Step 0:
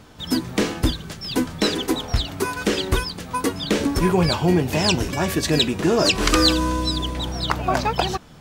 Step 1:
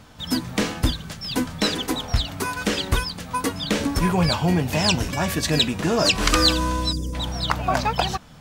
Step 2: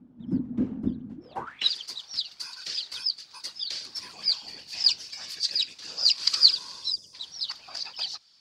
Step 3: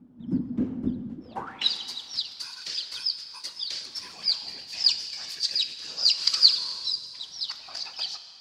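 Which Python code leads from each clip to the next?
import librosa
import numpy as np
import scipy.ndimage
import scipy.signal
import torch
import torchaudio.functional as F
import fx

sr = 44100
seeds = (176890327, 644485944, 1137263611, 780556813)

y1 = fx.spec_box(x, sr, start_s=6.93, length_s=0.2, low_hz=560.0, high_hz=4700.0, gain_db=-20)
y1 = fx.peak_eq(y1, sr, hz=370.0, db=-8.5, octaves=0.52)
y2 = fx.octave_divider(y1, sr, octaves=2, level_db=4.0)
y2 = fx.whisperise(y2, sr, seeds[0])
y2 = fx.filter_sweep_bandpass(y2, sr, from_hz=240.0, to_hz=4700.0, start_s=1.14, end_s=1.71, q=7.9)
y2 = y2 * librosa.db_to_amplitude(6.0)
y3 = fx.rev_plate(y2, sr, seeds[1], rt60_s=2.2, hf_ratio=0.8, predelay_ms=0, drr_db=8.5)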